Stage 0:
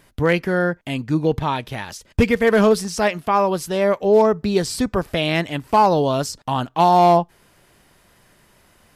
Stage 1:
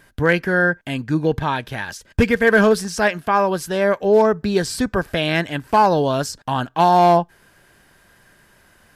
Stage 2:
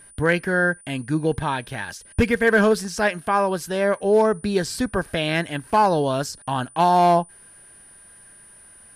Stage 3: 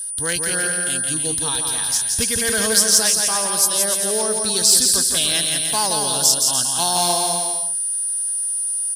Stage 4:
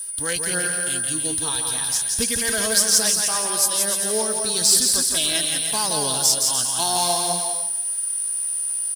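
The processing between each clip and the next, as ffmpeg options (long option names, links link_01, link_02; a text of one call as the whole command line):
ffmpeg -i in.wav -af "equalizer=frequency=1600:width=7.5:gain=12" out.wav
ffmpeg -i in.wav -af "aeval=exprs='val(0)+0.00708*sin(2*PI*9400*n/s)':channel_layout=same,volume=-3dB" out.wav
ffmpeg -i in.wav -af "tiltshelf=frequency=1300:gain=-3.5,aecho=1:1:170|297.5|393.1|464.8|518.6:0.631|0.398|0.251|0.158|0.1,aexciter=amount=8.2:drive=6.8:freq=3400,volume=-6dB" out.wav
ffmpeg -i in.wav -af "acrusher=bits=5:mode=log:mix=0:aa=0.000001,flanger=delay=3:depth=6.5:regen=48:speed=0.38:shape=sinusoidal,aecho=1:1:305:0.0794,volume=1.5dB" out.wav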